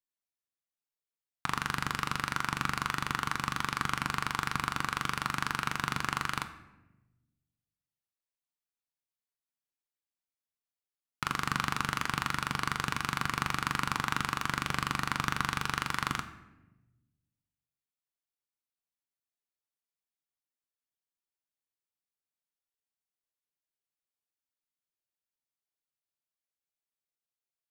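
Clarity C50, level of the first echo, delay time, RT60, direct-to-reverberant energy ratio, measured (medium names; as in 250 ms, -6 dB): 12.0 dB, no echo, no echo, 1.1 s, 7.5 dB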